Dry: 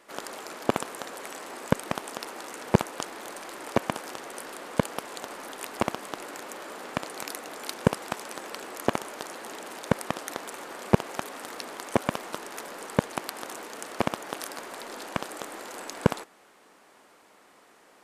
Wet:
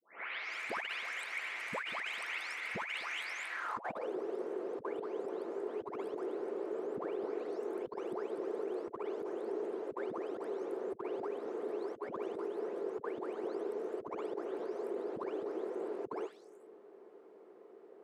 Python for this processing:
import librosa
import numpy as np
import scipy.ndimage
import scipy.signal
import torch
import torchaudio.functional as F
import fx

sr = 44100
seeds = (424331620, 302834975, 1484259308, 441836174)

y = fx.spec_delay(x, sr, highs='late', ms=432)
y = fx.filter_sweep_bandpass(y, sr, from_hz=2200.0, to_hz=400.0, start_s=3.48, end_s=4.11, q=5.3)
y = fx.over_compress(y, sr, threshold_db=-49.0, ratio=-1.0)
y = y * 10.0 ** (8.5 / 20.0)